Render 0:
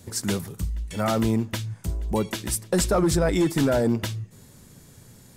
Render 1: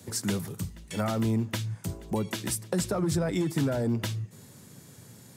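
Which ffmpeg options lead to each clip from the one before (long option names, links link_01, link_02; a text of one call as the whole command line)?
ffmpeg -i in.wav -filter_complex "[0:a]highpass=frequency=95:width=0.5412,highpass=frequency=95:width=1.3066,acrossover=split=170[link_01][link_02];[link_02]acompressor=threshold=-28dB:ratio=6[link_03];[link_01][link_03]amix=inputs=2:normalize=0" out.wav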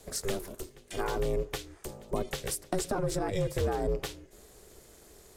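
ffmpeg -i in.wav -af "lowshelf=frequency=150:width_type=q:width=1.5:gain=-13.5,aeval=exprs='val(0)*sin(2*PI*190*n/s)':channel_layout=same" out.wav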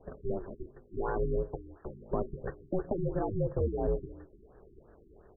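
ffmpeg -i in.wav -af "aecho=1:1:164:0.0794,afftfilt=real='re*lt(b*sr/1024,390*pow(1900/390,0.5+0.5*sin(2*PI*2.9*pts/sr)))':imag='im*lt(b*sr/1024,390*pow(1900/390,0.5+0.5*sin(2*PI*2.9*pts/sr)))':win_size=1024:overlap=0.75" out.wav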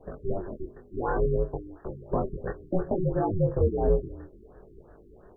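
ffmpeg -i in.wav -af "flanger=delay=20:depth=4.3:speed=0.61,volume=8.5dB" out.wav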